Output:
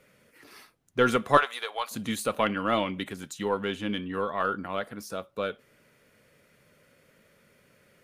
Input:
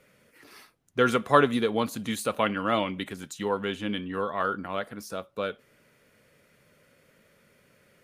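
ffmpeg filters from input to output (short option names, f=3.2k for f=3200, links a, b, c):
-filter_complex "[0:a]asettb=1/sr,asplit=3[a][b][c];[a]atrim=end=1.374[d];[b]atrim=start=1.37:end=1.91,asetpts=PTS-STARTPTS,afade=t=in:d=0.004:c=qsin,afade=t=out:st=0.536:d=0.004:c=qsin,highpass=f=670:w=0.5412,highpass=f=670:w=1.3066[e];[c]atrim=start=1.906[f];[d][e]acrossfade=d=0.004:c1=hsin:c2=qsin[g];[g][f]acrossfade=d=0.004:c1=qsin:c2=hsin,aeval=exprs='0.631*(cos(1*acos(clip(val(0)/0.631,-1,1)))-cos(1*PI/2))+0.0158*(cos(6*acos(clip(val(0)/0.631,-1,1)))-cos(6*PI/2))':c=same"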